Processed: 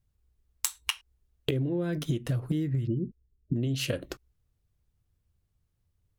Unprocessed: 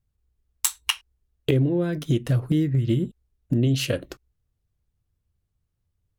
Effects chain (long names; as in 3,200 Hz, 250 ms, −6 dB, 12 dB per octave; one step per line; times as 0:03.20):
downward compressor, threshold −27 dBFS, peak gain reduction 11 dB
0:02.87–0:03.56: spectral peaks only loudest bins 16
level +1 dB